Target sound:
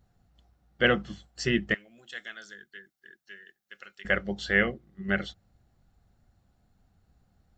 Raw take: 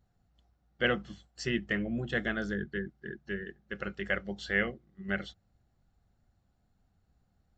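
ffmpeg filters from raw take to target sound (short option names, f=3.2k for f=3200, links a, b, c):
-filter_complex "[0:a]asettb=1/sr,asplit=3[a][b][c];[a]atrim=end=1.744[d];[b]atrim=start=1.74:end=4.05,asetpts=PTS-STARTPTS,afade=t=in:d=0.004:c=qsin,afade=t=out:st=2.306:d=0.004:c=qsin,aderivative[e];[c]atrim=start=4.046[f];[d][e]acrossfade=d=0.004:c1=hsin:c2=qsin[g];[g][f]acrossfade=d=0.004:c1=qsin:c2=hsin,volume=5.5dB"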